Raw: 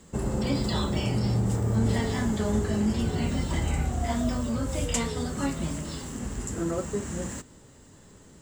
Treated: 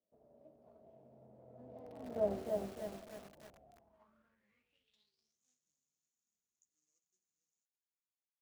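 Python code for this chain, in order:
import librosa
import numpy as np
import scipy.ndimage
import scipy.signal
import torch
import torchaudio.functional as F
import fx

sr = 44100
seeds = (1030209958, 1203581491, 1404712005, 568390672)

y = scipy.signal.medfilt(x, 25)
y = fx.doppler_pass(y, sr, speed_mps=34, closest_m=2.6, pass_at_s=2.26)
y = fx.peak_eq(y, sr, hz=970.0, db=-9.0, octaves=2.0)
y = fx.echo_heads(y, sr, ms=202, heads='second and third', feedback_pct=40, wet_db=-23.5)
y = fx.filter_sweep_bandpass(y, sr, from_hz=650.0, to_hz=6600.0, start_s=3.64, end_s=5.41, q=7.0)
y = fx.echo_crushed(y, sr, ms=305, feedback_pct=55, bits=11, wet_db=-3.0)
y = y * librosa.db_to_amplitude(12.5)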